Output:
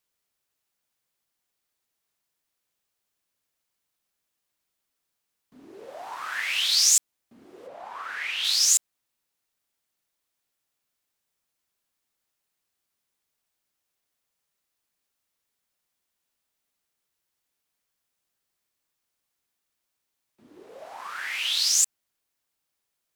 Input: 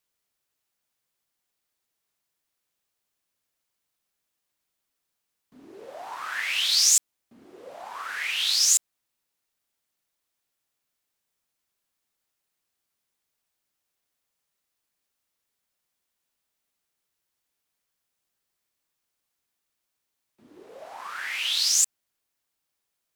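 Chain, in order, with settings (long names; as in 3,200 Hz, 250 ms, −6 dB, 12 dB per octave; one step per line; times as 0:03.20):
0:07.66–0:08.43: high-shelf EQ 3,600 Hz → 6,200 Hz −11.5 dB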